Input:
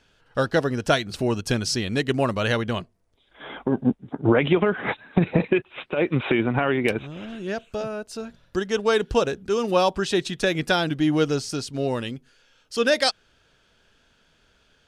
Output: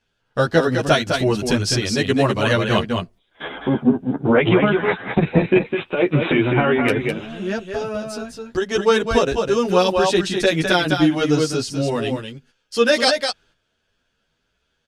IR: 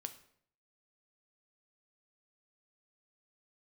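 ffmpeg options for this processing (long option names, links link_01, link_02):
-filter_complex "[0:a]agate=range=-14dB:threshold=-48dB:ratio=16:detection=peak,asplit=3[link_01][link_02][link_03];[link_01]afade=type=out:start_time=2.69:duration=0.02[link_04];[link_02]acontrast=66,afade=type=in:start_time=2.69:duration=0.02,afade=type=out:start_time=3.46:duration=0.02[link_05];[link_03]afade=type=in:start_time=3.46:duration=0.02[link_06];[link_04][link_05][link_06]amix=inputs=3:normalize=0,aecho=1:1:206:0.531,asplit=2[link_07][link_08];[link_08]adelay=10.4,afreqshift=2.1[link_09];[link_07][link_09]amix=inputs=2:normalize=1,volume=7dB"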